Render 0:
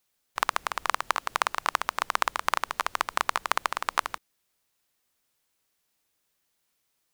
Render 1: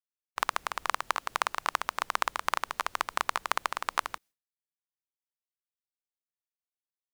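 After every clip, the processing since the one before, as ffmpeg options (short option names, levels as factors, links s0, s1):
-af "agate=range=0.0224:threshold=0.00355:ratio=3:detection=peak,volume=0.708"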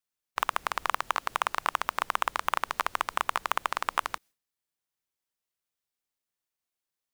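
-filter_complex "[0:a]asplit=2[s0][s1];[s1]acompressor=threshold=0.0158:ratio=6,volume=0.794[s2];[s0][s2]amix=inputs=2:normalize=0,asoftclip=type=hard:threshold=0.251,volume=1.19"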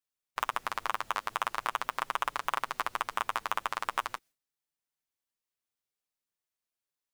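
-af "flanger=delay=6.8:depth=2.6:regen=-16:speed=0.43:shape=triangular"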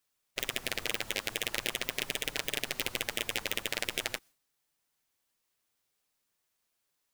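-af "afftfilt=real='re*lt(hypot(re,im),0.0355)':imag='im*lt(hypot(re,im),0.0355)':win_size=1024:overlap=0.75,acrusher=bits=2:mode=log:mix=0:aa=0.000001,volume=2.66"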